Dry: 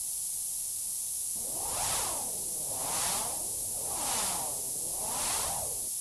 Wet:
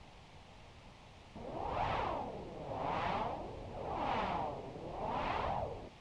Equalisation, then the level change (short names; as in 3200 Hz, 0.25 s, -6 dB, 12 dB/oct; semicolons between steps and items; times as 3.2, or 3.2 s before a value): LPF 2400 Hz 24 dB/oct; dynamic EQ 1600 Hz, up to -5 dB, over -52 dBFS, Q 1.2; +3.5 dB